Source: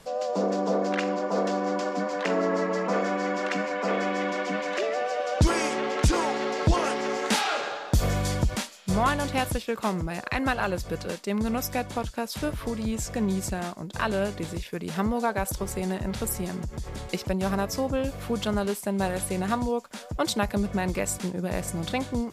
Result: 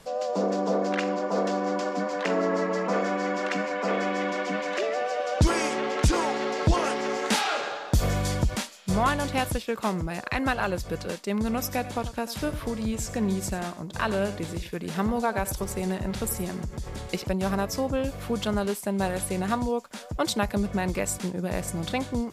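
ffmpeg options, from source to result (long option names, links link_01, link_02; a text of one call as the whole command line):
ffmpeg -i in.wav -filter_complex "[0:a]asettb=1/sr,asplit=3[link_01][link_02][link_03];[link_01]atrim=end=11.484[link_04];[link_02]atrim=start=11.48:end=17.24,asetpts=PTS-STARTPTS,afade=type=in:duration=0.004:curve=qsin,afade=type=out:start_time=5.756:duration=0.004:curve=qsin,aecho=1:1:92:0.188,atrim=end_sample=254016[link_05];[link_03]atrim=start=17.236[link_06];[link_04][link_05]acrossfade=duration=0.004:curve1=hsin:curve2=qsin[link_07];[link_07][link_06]acrossfade=duration=0.004:curve1=qsin:curve2=hsin" out.wav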